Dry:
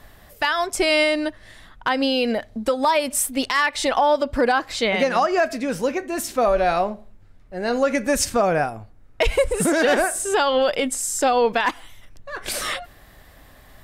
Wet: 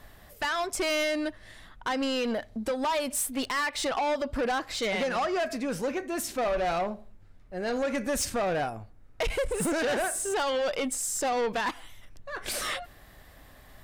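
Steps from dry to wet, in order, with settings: soft clip -20 dBFS, distortion -10 dB; gain -4 dB

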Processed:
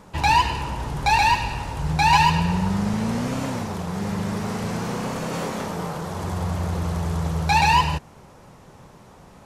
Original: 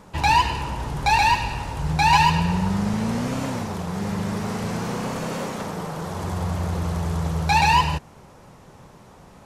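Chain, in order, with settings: 5.31–5.98 doubler 23 ms -4 dB

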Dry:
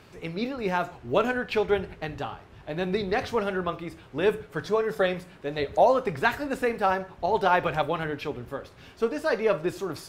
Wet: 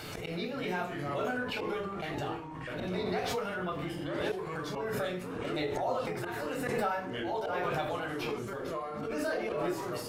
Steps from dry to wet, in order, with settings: bin magnitudes rounded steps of 15 dB; compressor 2:1, threshold -38 dBFS, peak gain reduction 12.5 dB; gate -44 dBFS, range -22 dB; high shelf 6700 Hz +8.5 dB; reverb RT60 0.40 s, pre-delay 12 ms, DRR -0.5 dB; auto swell 0.127 s; echoes that change speed 0.125 s, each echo -4 st, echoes 3, each echo -6 dB; low shelf 160 Hz -11 dB; backwards sustainer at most 23 dB/s; gain -4.5 dB

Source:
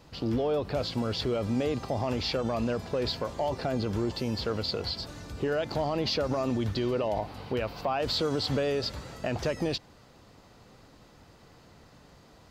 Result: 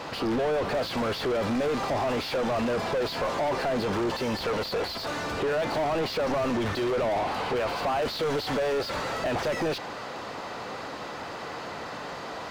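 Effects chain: low shelf 470 Hz -6.5 dB; overdrive pedal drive 36 dB, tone 1200 Hz, clips at -19 dBFS

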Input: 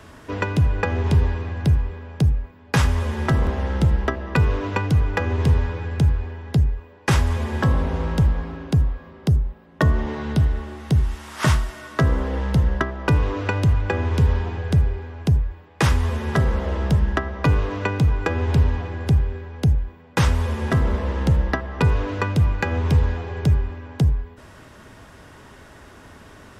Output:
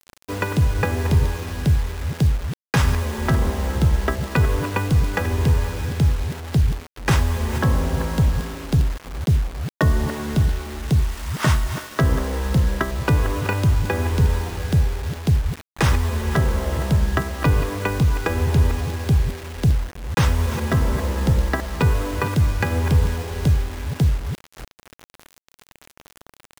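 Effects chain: reverse delay 0.237 s, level -10.5 dB; bit-crush 6-bit

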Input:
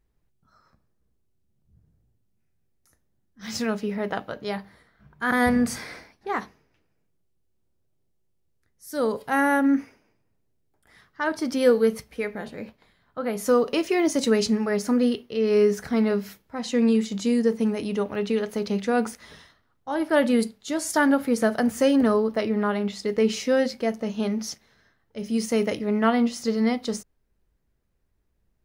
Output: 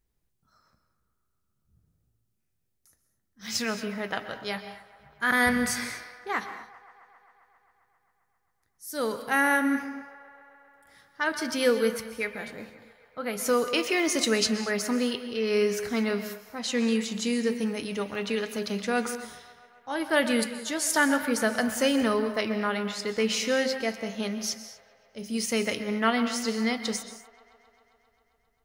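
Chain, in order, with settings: high shelf 3600 Hz +10 dB; band-limited delay 0.133 s, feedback 78%, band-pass 1300 Hz, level -15 dB; dynamic EQ 2300 Hz, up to +7 dB, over -39 dBFS, Q 0.71; on a send at -11 dB: reverb, pre-delay 0.114 s; on the sum: gain -6 dB

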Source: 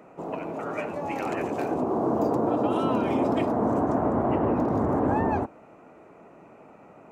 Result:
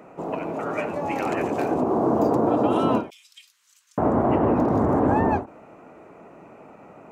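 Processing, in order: 3.1–3.98 inverse Chebyshev high-pass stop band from 780 Hz, stop band 70 dB; ending taper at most 190 dB/s; gain +4 dB

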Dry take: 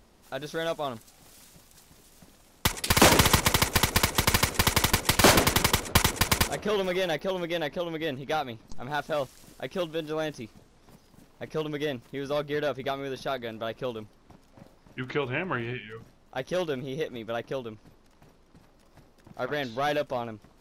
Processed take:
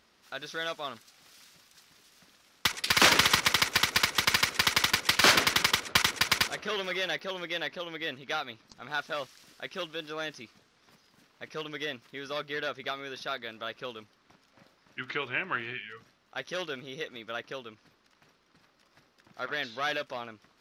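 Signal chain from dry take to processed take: HPF 190 Hz 6 dB/oct; band shelf 2600 Hz +9 dB 2.6 oct; gain -7.5 dB

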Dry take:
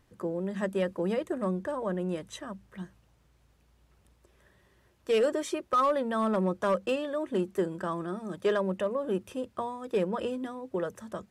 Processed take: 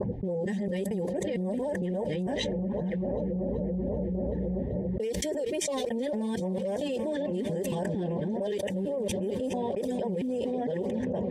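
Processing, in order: local time reversal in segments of 0.227 s; bell 2600 Hz -8 dB 0.24 oct; multi-head echo 0.384 s, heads first and second, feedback 66%, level -22.5 dB; LFO notch sine 3.6 Hz 600–4300 Hz; notch comb 330 Hz; low-pass opened by the level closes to 480 Hz, open at -29 dBFS; Chebyshev band-stop 810–2000 Hz, order 2; fast leveller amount 100%; gain -7 dB

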